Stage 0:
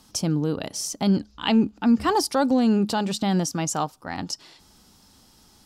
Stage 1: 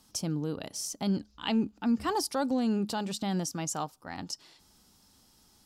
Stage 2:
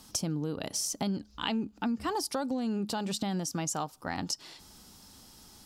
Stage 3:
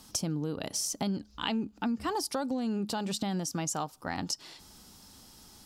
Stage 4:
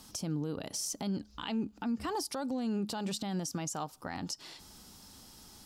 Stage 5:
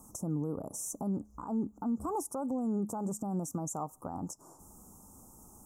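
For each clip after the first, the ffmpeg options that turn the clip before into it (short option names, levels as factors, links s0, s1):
-af "highshelf=f=7000:g=5,volume=0.376"
-af "acompressor=threshold=0.0126:ratio=6,volume=2.66"
-af anull
-af "alimiter=level_in=1.33:limit=0.0631:level=0:latency=1:release=76,volume=0.75"
-af "asuperstop=centerf=2900:order=12:qfactor=0.54,volume=1.12"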